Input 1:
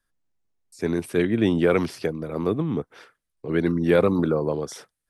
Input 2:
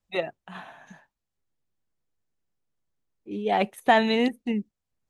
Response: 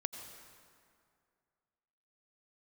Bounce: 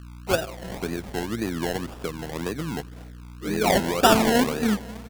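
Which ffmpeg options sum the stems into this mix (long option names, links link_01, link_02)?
-filter_complex "[0:a]highshelf=frequency=8200:gain=5,acompressor=threshold=-24dB:ratio=2.5,aeval=exprs='val(0)+0.0141*(sin(2*PI*60*n/s)+sin(2*PI*2*60*n/s)/2+sin(2*PI*3*60*n/s)/3+sin(2*PI*4*60*n/s)/4+sin(2*PI*5*60*n/s)/5)':channel_layout=same,volume=-4dB,asplit=3[link_01][link_02][link_03];[link_02]volume=-14.5dB[link_04];[1:a]adynamicsmooth=sensitivity=7:basefreq=2300,adelay=150,volume=1.5dB,asplit=2[link_05][link_06];[link_06]volume=-5dB[link_07];[link_03]apad=whole_len=231149[link_08];[link_05][link_08]sidechaincompress=threshold=-31dB:ratio=8:attack=16:release=147[link_09];[2:a]atrim=start_sample=2205[link_10];[link_04][link_07]amix=inputs=2:normalize=0[link_11];[link_11][link_10]afir=irnorm=-1:irlink=0[link_12];[link_01][link_09][link_12]amix=inputs=3:normalize=0,acrusher=samples=29:mix=1:aa=0.000001:lfo=1:lforange=17.4:lforate=1.9"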